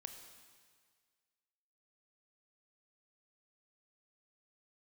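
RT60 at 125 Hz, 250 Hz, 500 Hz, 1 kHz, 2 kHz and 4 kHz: 1.7, 1.7, 1.8, 1.8, 1.8, 1.8 s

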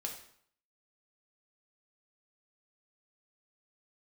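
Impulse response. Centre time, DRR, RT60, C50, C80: 22 ms, 0.5 dB, 0.60 s, 7.0 dB, 10.5 dB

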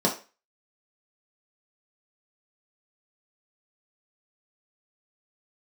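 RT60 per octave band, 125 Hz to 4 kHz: 0.20, 0.30, 0.35, 0.30, 0.35, 0.30 s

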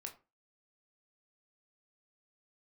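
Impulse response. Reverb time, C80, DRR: 0.30 s, 19.5 dB, 2.5 dB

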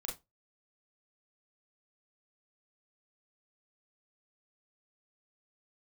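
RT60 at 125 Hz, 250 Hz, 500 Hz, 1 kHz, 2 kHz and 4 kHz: 0.25, 0.20, 0.20, 0.20, 0.15, 0.15 s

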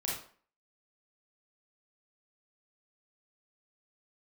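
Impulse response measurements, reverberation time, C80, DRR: 0.45 s, 7.5 dB, -5.0 dB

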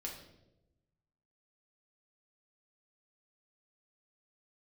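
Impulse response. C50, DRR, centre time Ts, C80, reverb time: 5.5 dB, -2.0 dB, 32 ms, 8.5 dB, 0.95 s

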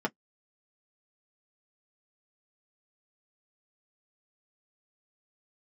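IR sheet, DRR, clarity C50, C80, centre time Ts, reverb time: -1.0 dB, 41.0 dB, 60.0 dB, 7 ms, not exponential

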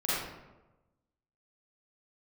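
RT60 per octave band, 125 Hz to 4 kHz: 1.3, 1.1, 1.1, 1.0, 0.80, 0.60 s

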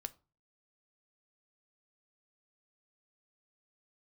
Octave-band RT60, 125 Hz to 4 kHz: 0.55, 0.40, 0.30, 0.35, 0.25, 0.25 s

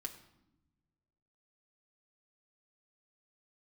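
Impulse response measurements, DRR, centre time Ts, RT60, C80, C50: 1.0 dB, 11 ms, 0.90 s, 14.0 dB, 12.0 dB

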